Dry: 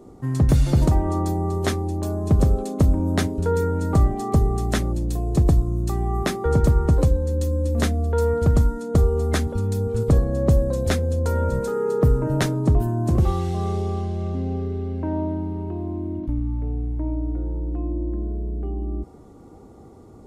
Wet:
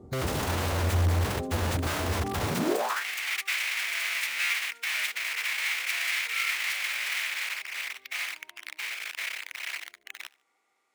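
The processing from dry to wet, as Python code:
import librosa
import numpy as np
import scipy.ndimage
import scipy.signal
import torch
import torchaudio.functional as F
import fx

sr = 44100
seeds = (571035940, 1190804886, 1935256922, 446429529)

p1 = fx.high_shelf(x, sr, hz=2100.0, db=-8.0)
p2 = (np.mod(10.0 ** (20.0 / 20.0) * p1 + 1.0, 2.0) - 1.0) / 10.0 ** (20.0 / 20.0)
p3 = fx.filter_sweep_highpass(p2, sr, from_hz=81.0, to_hz=2200.0, start_s=4.51, end_s=5.65, q=4.0)
p4 = fx.stretch_vocoder(p3, sr, factor=0.54)
p5 = p4 + fx.echo_feedback(p4, sr, ms=74, feedback_pct=34, wet_db=-23, dry=0)
y = p5 * librosa.db_to_amplitude(-4.0)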